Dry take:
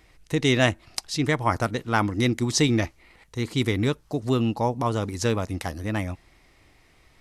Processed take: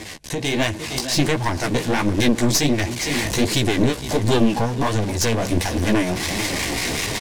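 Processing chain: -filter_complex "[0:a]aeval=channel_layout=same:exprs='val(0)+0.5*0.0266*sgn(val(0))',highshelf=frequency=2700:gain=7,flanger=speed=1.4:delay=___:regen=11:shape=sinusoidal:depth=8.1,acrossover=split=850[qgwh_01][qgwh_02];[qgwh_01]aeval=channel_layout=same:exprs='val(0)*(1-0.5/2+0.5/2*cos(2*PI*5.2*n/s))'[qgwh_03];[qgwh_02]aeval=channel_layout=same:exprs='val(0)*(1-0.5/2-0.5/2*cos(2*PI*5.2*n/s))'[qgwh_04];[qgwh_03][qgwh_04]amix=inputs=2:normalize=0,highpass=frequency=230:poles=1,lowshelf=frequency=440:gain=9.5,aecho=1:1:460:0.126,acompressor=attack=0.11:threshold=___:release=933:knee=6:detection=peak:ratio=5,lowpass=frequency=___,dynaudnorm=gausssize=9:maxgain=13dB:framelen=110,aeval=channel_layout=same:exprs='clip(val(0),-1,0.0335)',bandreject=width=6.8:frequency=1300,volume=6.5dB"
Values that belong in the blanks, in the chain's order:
9.3, -27dB, 9700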